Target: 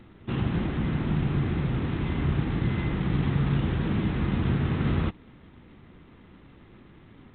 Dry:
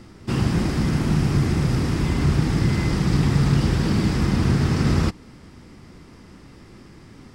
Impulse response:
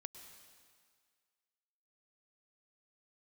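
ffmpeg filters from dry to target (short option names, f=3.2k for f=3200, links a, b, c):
-filter_complex "[0:a]asplit=3[a][b][c];[a]afade=t=out:st=1.25:d=0.02[d];[b]bandreject=f=51.01:t=h:w=4,bandreject=f=102.02:t=h:w=4,bandreject=f=153.03:t=h:w=4,afade=t=in:st=1.25:d=0.02,afade=t=out:st=3.73:d=0.02[e];[c]afade=t=in:st=3.73:d=0.02[f];[d][e][f]amix=inputs=3:normalize=0,volume=-6dB" -ar 8000 -c:a adpcm_g726 -b:a 24k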